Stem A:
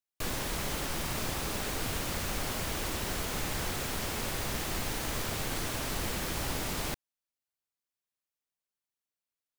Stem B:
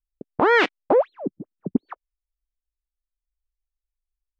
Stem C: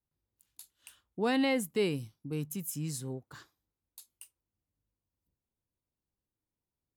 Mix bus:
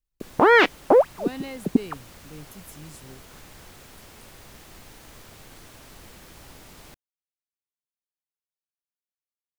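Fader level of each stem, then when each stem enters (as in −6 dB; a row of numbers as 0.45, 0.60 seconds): −13.0, +2.0, −8.0 decibels; 0.00, 0.00, 0.00 seconds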